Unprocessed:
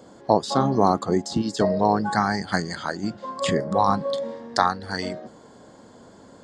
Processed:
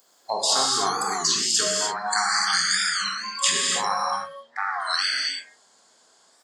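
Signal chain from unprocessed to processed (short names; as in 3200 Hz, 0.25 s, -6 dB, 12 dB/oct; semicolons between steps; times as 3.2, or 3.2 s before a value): per-bin compression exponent 0.6; 4.11–4.74 LPF 1100 Hz 6 dB/oct; on a send: echo 98 ms -16 dB; on the sum: spectral noise reduction 28 dB; in parallel at -1 dB: compressor, threshold -30 dBFS, peak gain reduction 17.5 dB; on the sum: differentiator; non-linear reverb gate 0.33 s flat, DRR -3 dB; record warp 33 1/3 rpm, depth 160 cents; gain +8 dB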